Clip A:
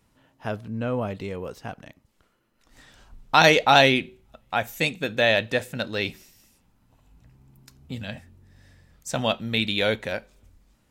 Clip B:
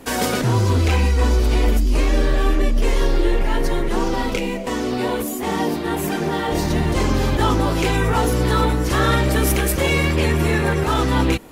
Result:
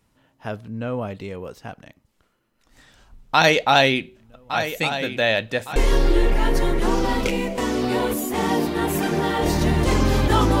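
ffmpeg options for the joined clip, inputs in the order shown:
-filter_complex "[0:a]asplit=3[s0][s1][s2];[s0]afade=t=out:st=4.14:d=0.02[s3];[s1]aecho=1:1:1162|2324|3486|4648:0.282|0.121|0.0521|0.0224,afade=t=in:st=4.14:d=0.02,afade=t=out:st=5.76:d=0.02[s4];[s2]afade=t=in:st=5.76:d=0.02[s5];[s3][s4][s5]amix=inputs=3:normalize=0,apad=whole_dur=10.6,atrim=end=10.6,atrim=end=5.762[s6];[1:a]atrim=start=2.848:end=7.69[s7];[s6][s7]acrossfade=d=0.004:c1=hsin:c2=hsin"

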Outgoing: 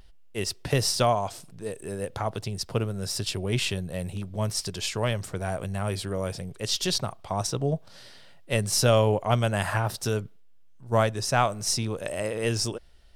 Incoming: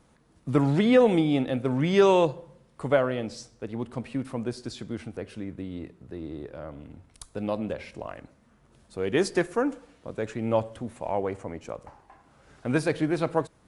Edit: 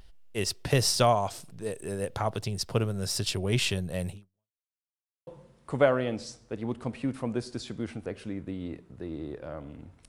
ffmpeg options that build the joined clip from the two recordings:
-filter_complex "[0:a]apad=whole_dur=10.08,atrim=end=10.08,asplit=2[s0][s1];[s0]atrim=end=4.62,asetpts=PTS-STARTPTS,afade=t=out:st=4.1:d=0.52:c=exp[s2];[s1]atrim=start=4.62:end=5.27,asetpts=PTS-STARTPTS,volume=0[s3];[1:a]atrim=start=2.38:end=7.19,asetpts=PTS-STARTPTS,afade=t=in:d=0.004:c=hsin[s4];[s2][s3][s4]concat=n=3:v=0:a=1"

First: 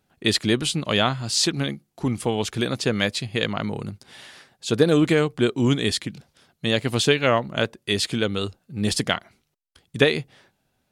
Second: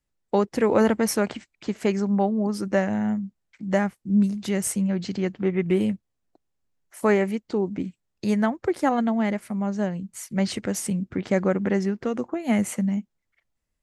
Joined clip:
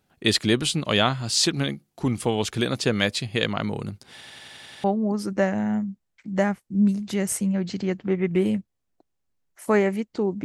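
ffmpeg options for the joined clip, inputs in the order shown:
-filter_complex "[0:a]apad=whole_dur=10.44,atrim=end=10.44,asplit=8[s0][s1][s2][s3][s4][s5][s6][s7];[s0]atrim=end=4.212[s8];[s1]atrim=start=4.118:end=4.212[s9];[s2]atrim=start=4.118:end=4.212[s10];[s3]atrim=start=4.118:end=4.212[s11];[s4]atrim=start=4.118:end=4.212[s12];[s5]atrim=start=4.118:end=4.212[s13];[s6]atrim=start=4.118:end=4.212[s14];[s7]atrim=start=4.118:end=4.212[s15];[1:a]atrim=start=2.188:end=7.79[s16];[s8][s9]acrossfade=d=0.004:c1=hsin:c2=hsin[s17];[s17][s10]acrossfade=d=0.004:c1=hsin:c2=hsin[s18];[s18][s11]acrossfade=d=0.004:c1=hsin:c2=hsin[s19];[s19][s12]acrossfade=d=0.004:c1=hsin:c2=hsin[s20];[s20][s13]acrossfade=d=0.004:c1=hsin:c2=hsin[s21];[s21][s14]acrossfade=d=0.004:c1=hsin:c2=hsin[s22];[s22][s15]acrossfade=d=0.004:c1=hsin:c2=hsin[s23];[s23][s16]acrossfade=d=0.004:c1=hsin:c2=hsin"

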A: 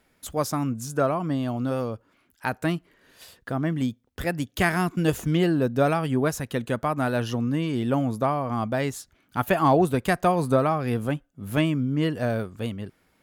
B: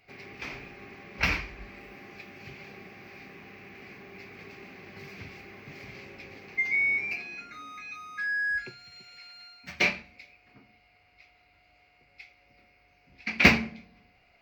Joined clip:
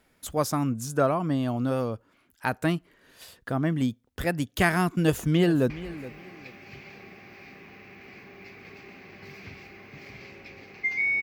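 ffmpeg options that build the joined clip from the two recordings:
-filter_complex "[0:a]apad=whole_dur=11.22,atrim=end=11.22,atrim=end=5.702[s0];[1:a]atrim=start=1.438:end=6.96[s1];[s0][s1]acrossfade=d=0.004:c1=hsin:c2=hsin,asplit=2[s2][s3];[s3]afade=t=in:st=4.95:d=0.01,afade=t=out:st=5.7:d=0.01,aecho=0:1:420|840:0.158489|0.0396223[s4];[s2][s4]amix=inputs=2:normalize=0"

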